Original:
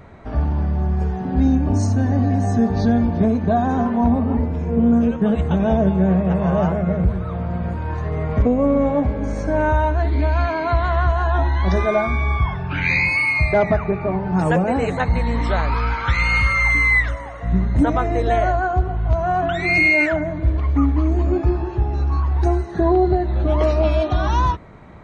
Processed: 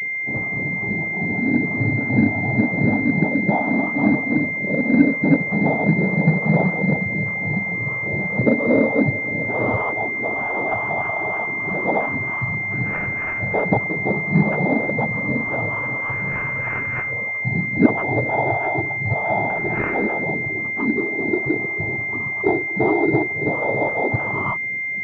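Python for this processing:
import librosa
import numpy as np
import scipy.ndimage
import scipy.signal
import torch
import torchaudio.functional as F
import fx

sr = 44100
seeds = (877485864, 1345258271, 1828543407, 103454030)

y = fx.harmonic_tremolo(x, sr, hz=3.2, depth_pct=70, crossover_hz=770.0)
y = fx.noise_vocoder(y, sr, seeds[0], bands=12)
y = fx.pwm(y, sr, carrier_hz=2100.0)
y = F.gain(torch.from_numpy(y), 3.0).numpy()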